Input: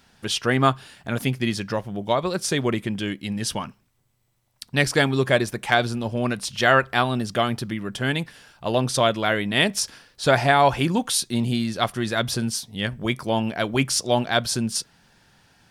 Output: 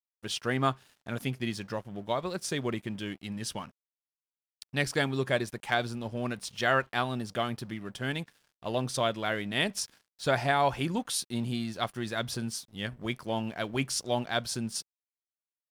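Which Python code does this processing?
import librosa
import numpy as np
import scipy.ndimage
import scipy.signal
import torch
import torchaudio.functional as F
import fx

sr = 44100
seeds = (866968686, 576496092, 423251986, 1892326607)

y = np.sign(x) * np.maximum(np.abs(x) - 10.0 ** (-46.0 / 20.0), 0.0)
y = y * librosa.db_to_amplitude(-8.5)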